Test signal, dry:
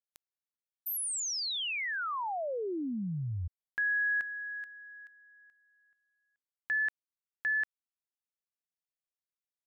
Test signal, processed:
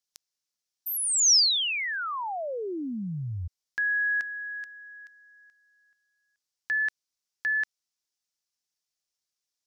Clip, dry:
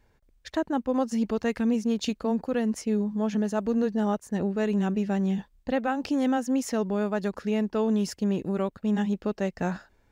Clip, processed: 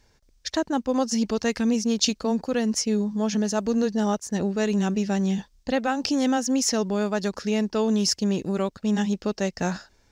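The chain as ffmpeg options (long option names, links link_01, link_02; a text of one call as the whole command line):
ffmpeg -i in.wav -af "equalizer=frequency=5500:width=1.1:gain=14.5,volume=2dB" out.wav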